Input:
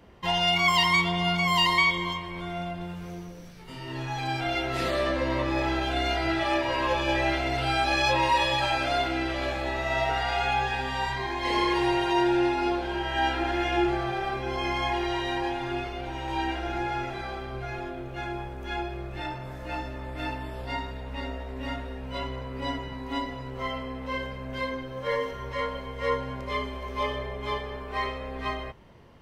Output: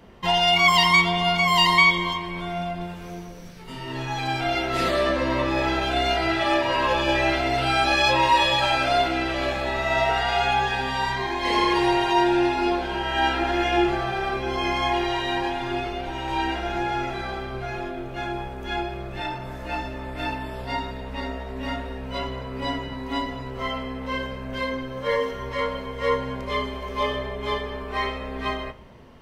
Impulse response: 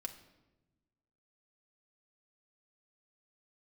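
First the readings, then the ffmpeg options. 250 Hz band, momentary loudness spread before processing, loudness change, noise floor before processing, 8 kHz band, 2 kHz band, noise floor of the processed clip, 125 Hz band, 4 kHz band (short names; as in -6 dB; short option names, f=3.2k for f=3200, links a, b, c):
+3.0 dB, 13 LU, +4.5 dB, -39 dBFS, +4.5 dB, +4.5 dB, -36 dBFS, +2.0 dB, +5.0 dB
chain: -filter_complex "[0:a]asplit=2[a][b];[1:a]atrim=start_sample=2205[c];[b][c]afir=irnorm=-1:irlink=0,volume=0dB[d];[a][d]amix=inputs=2:normalize=0"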